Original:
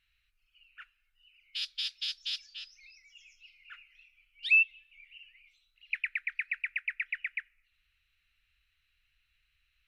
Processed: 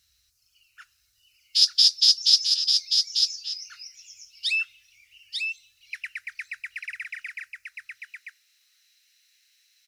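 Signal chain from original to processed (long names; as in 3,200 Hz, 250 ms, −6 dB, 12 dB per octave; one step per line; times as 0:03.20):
high-pass filter sweep 74 Hz → 2,000 Hz, 0:06.94–0:07.99
high shelf with overshoot 3,800 Hz +13.5 dB, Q 3
single-tap delay 894 ms −4.5 dB
level +4.5 dB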